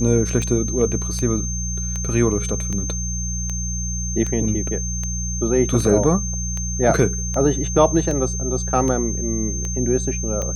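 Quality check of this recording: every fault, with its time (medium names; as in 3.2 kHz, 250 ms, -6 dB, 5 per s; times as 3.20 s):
hum 60 Hz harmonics 3 -26 dBFS
tick 78 rpm -14 dBFS
whine 6.3 kHz -27 dBFS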